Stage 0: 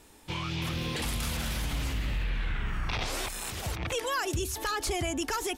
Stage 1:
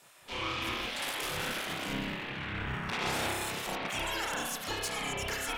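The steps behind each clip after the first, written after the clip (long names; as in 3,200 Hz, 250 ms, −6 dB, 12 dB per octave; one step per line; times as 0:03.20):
tube saturation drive 29 dB, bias 0.4
spring reverb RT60 1.1 s, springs 30 ms, chirp 40 ms, DRR −5 dB
gate on every frequency bin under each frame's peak −10 dB weak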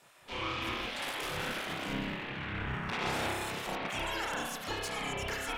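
high-shelf EQ 4,400 Hz −7 dB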